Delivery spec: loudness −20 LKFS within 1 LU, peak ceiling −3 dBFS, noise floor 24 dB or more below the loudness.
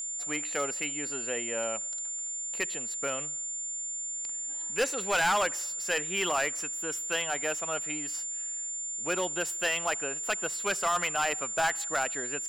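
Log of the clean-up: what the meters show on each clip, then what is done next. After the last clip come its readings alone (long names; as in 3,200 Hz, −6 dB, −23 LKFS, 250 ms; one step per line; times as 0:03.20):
share of clipped samples 1.1%; peaks flattened at −21.5 dBFS; interfering tone 7,200 Hz; level of the tone −33 dBFS; integrated loudness −29.5 LKFS; sample peak −21.5 dBFS; target loudness −20.0 LKFS
→ clipped peaks rebuilt −21.5 dBFS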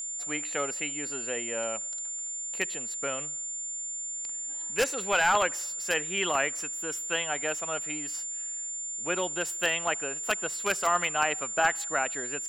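share of clipped samples 0.0%; interfering tone 7,200 Hz; level of the tone −33 dBFS
→ notch filter 7,200 Hz, Q 30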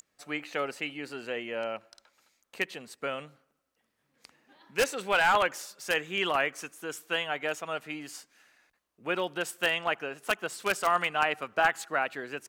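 interfering tone none found; integrated loudness −30.5 LKFS; sample peak −12.0 dBFS; target loudness −20.0 LKFS
→ level +10.5 dB
brickwall limiter −3 dBFS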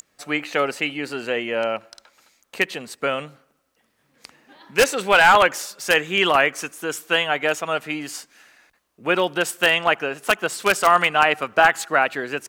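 integrated loudness −20.0 LKFS; sample peak −3.0 dBFS; background noise floor −68 dBFS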